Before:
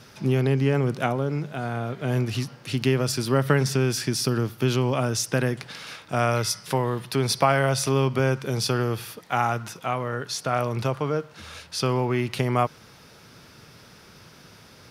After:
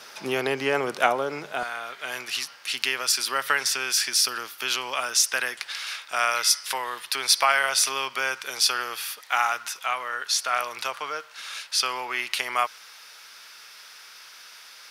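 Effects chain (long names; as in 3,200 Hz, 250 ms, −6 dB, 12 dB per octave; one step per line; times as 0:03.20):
high-pass filter 640 Hz 12 dB per octave, from 0:01.63 1,400 Hz
level +7 dB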